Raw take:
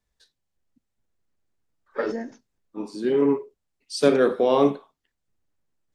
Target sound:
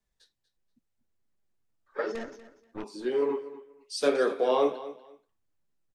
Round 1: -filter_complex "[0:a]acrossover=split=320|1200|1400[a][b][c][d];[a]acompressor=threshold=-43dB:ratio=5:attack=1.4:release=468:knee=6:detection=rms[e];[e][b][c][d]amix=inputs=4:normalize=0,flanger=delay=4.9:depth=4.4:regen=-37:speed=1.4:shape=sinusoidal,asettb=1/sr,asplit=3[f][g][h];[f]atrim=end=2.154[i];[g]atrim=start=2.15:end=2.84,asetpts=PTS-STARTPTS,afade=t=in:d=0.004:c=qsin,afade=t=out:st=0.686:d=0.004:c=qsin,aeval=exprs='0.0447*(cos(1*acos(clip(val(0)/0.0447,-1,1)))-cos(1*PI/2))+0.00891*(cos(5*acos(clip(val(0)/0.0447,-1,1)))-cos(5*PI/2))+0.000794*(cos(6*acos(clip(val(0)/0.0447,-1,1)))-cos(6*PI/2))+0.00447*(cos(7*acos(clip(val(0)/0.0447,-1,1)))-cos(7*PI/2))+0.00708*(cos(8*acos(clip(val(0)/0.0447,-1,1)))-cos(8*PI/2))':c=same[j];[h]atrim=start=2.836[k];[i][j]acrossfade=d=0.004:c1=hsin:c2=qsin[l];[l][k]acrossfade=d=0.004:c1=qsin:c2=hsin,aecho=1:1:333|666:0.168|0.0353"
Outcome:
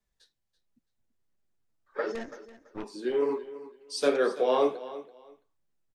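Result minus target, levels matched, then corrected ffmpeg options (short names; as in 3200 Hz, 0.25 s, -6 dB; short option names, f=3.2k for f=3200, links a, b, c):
echo 93 ms late
-filter_complex "[0:a]acrossover=split=320|1200|1400[a][b][c][d];[a]acompressor=threshold=-43dB:ratio=5:attack=1.4:release=468:knee=6:detection=rms[e];[e][b][c][d]amix=inputs=4:normalize=0,flanger=delay=4.9:depth=4.4:regen=-37:speed=1.4:shape=sinusoidal,asettb=1/sr,asplit=3[f][g][h];[f]atrim=end=2.154[i];[g]atrim=start=2.15:end=2.84,asetpts=PTS-STARTPTS,afade=t=in:d=0.004:c=qsin,afade=t=out:st=0.686:d=0.004:c=qsin,aeval=exprs='0.0447*(cos(1*acos(clip(val(0)/0.0447,-1,1)))-cos(1*PI/2))+0.00891*(cos(5*acos(clip(val(0)/0.0447,-1,1)))-cos(5*PI/2))+0.000794*(cos(6*acos(clip(val(0)/0.0447,-1,1)))-cos(6*PI/2))+0.00447*(cos(7*acos(clip(val(0)/0.0447,-1,1)))-cos(7*PI/2))+0.00708*(cos(8*acos(clip(val(0)/0.0447,-1,1)))-cos(8*PI/2))':c=same[j];[h]atrim=start=2.836[k];[i][j]acrossfade=d=0.004:c1=hsin:c2=qsin[l];[l][k]acrossfade=d=0.004:c1=qsin:c2=hsin,aecho=1:1:240|480:0.168|0.0353"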